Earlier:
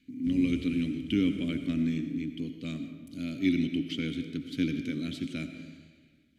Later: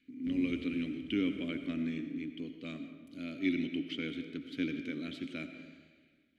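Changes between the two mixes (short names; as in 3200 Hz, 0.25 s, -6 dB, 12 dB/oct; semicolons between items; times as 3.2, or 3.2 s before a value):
background: send on; master: add tone controls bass -13 dB, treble -13 dB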